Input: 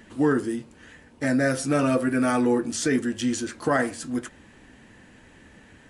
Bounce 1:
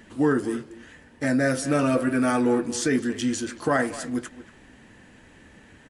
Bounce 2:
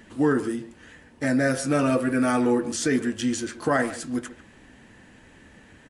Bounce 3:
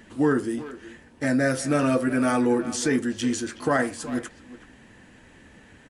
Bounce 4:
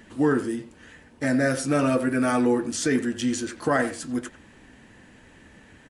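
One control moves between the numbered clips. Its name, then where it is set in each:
far-end echo of a speakerphone, delay time: 230, 140, 370, 90 milliseconds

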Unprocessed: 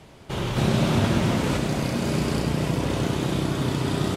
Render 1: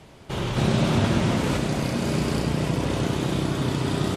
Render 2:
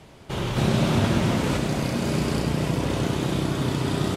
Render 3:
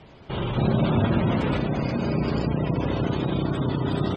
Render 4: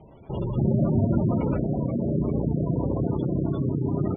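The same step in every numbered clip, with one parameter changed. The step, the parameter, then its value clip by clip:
gate on every frequency bin, under each frame's peak: −45, −55, −25, −15 decibels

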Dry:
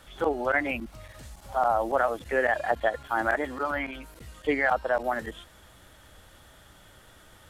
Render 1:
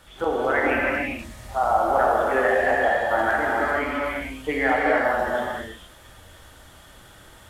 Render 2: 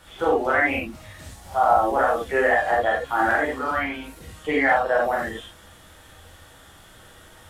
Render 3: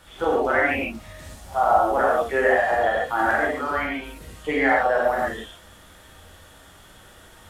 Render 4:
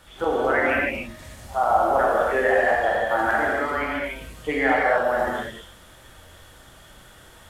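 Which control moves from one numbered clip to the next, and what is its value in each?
reverb whose tail is shaped and stops, gate: 490, 110, 170, 320 milliseconds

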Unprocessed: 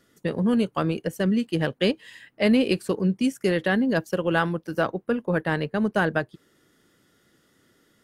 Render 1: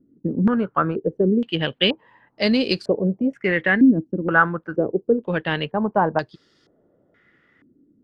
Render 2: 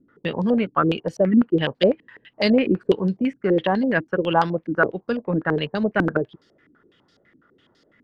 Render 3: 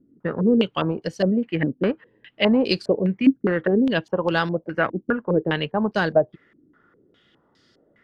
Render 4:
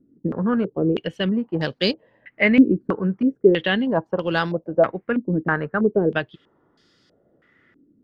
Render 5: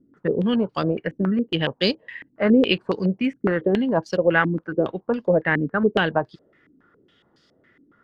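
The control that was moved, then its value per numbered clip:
low-pass on a step sequencer, speed: 2.1, 12, 4.9, 3.1, 7.2 Hertz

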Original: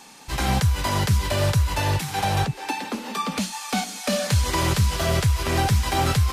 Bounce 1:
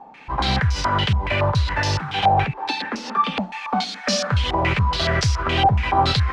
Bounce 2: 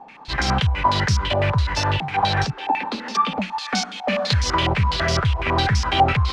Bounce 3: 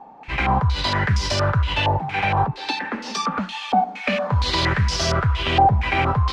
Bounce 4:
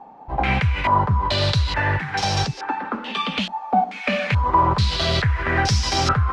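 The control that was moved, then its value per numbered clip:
low-pass on a step sequencer, speed: 7.1, 12, 4.3, 2.3 Hertz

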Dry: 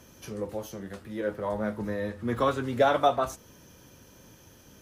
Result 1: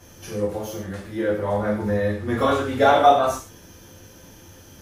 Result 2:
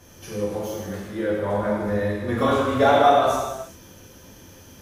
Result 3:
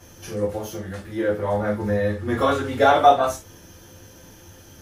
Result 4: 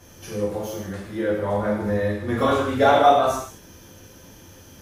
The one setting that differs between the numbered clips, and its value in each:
reverb whose tail is shaped and stops, gate: 170, 450, 100, 260 milliseconds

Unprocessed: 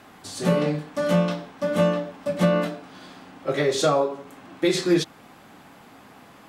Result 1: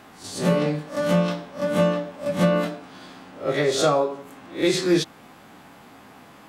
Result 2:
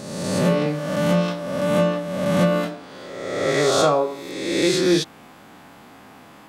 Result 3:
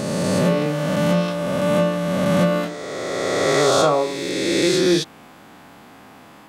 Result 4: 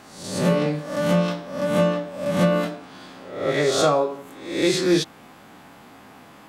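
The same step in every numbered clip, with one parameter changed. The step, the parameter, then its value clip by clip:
peak hold with a rise ahead of every peak, rising 60 dB in: 0.3, 1.41, 2.97, 0.65 seconds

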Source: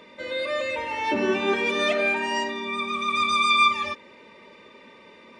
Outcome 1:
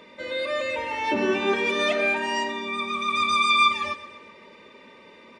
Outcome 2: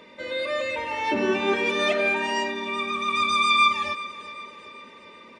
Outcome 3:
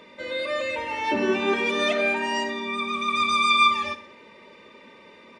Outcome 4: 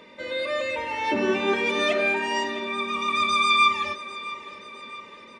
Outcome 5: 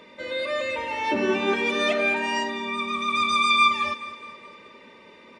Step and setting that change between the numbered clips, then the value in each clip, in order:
repeating echo, delay time: 126, 387, 64, 661, 210 milliseconds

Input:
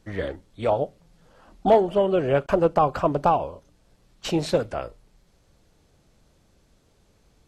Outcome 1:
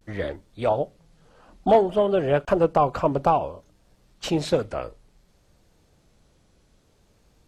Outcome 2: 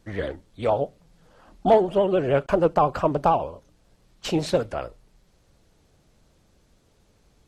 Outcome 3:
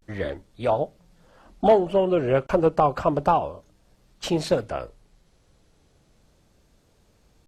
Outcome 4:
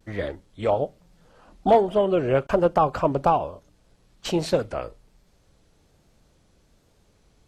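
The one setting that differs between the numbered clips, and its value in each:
pitch vibrato, speed: 0.58, 13, 0.32, 1.2 Hertz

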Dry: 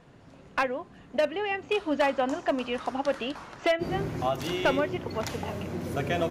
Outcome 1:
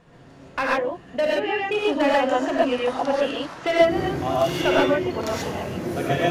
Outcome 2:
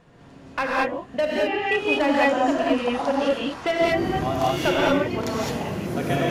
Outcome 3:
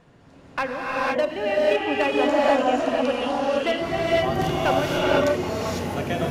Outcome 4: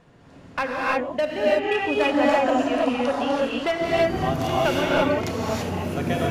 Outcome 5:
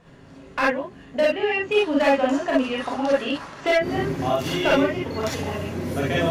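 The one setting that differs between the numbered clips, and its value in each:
reverb whose tail is shaped and stops, gate: 160, 240, 530, 360, 80 milliseconds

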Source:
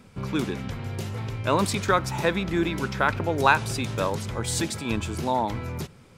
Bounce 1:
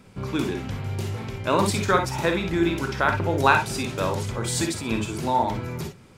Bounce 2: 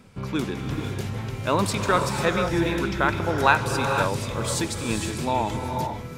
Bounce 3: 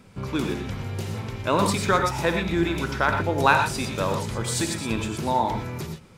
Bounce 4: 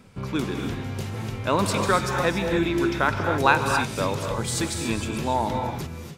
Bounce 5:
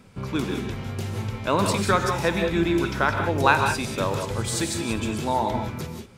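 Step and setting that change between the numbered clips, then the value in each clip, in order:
reverb whose tail is shaped and stops, gate: 80, 530, 140, 310, 210 milliseconds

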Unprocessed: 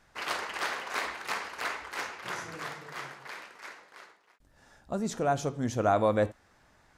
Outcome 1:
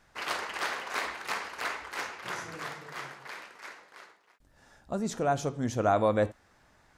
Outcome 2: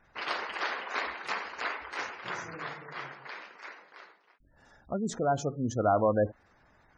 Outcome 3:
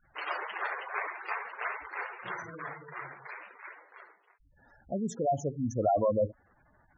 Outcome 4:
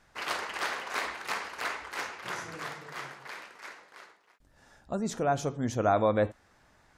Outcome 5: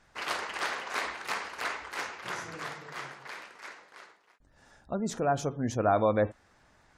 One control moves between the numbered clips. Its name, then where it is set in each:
gate on every frequency bin, under each frame's peak: −60, −20, −10, −45, −35 decibels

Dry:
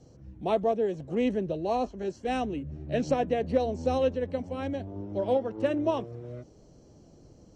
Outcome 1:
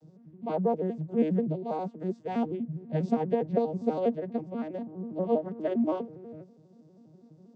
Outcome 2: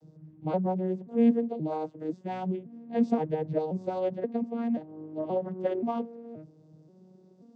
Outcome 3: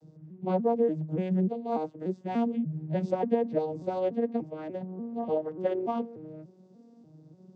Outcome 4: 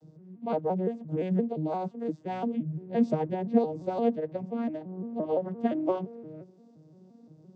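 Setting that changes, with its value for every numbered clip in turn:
vocoder with an arpeggio as carrier, a note every: 81, 529, 293, 173 milliseconds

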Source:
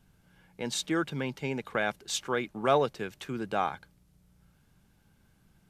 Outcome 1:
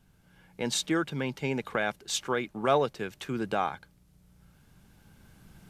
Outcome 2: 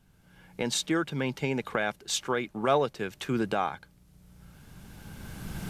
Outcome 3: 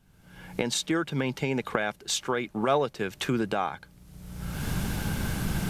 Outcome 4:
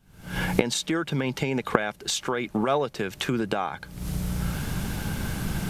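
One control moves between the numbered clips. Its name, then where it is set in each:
camcorder AGC, rising by: 5.5, 14, 35, 88 dB per second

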